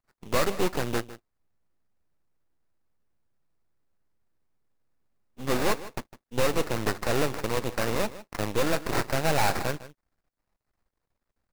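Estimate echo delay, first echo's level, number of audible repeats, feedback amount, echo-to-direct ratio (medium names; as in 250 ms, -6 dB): 155 ms, -16.0 dB, 1, no regular repeats, -16.0 dB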